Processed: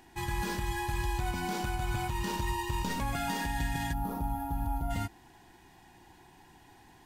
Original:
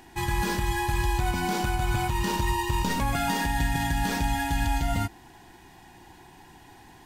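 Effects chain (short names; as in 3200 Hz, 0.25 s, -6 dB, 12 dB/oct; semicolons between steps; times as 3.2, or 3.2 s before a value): spectral gain 3.93–4.91, 1400–9800 Hz -19 dB; gain -6.5 dB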